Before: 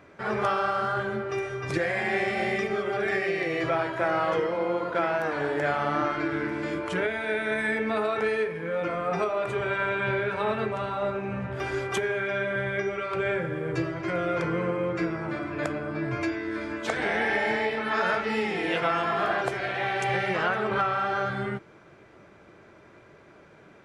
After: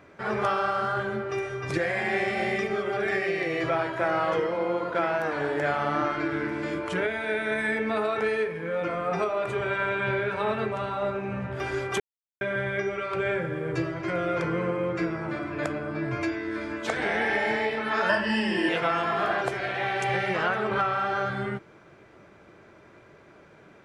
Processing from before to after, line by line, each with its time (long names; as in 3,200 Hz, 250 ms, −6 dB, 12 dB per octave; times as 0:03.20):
0:12.00–0:12.41: silence
0:18.09–0:18.69: EQ curve with evenly spaced ripples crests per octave 1.3, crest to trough 18 dB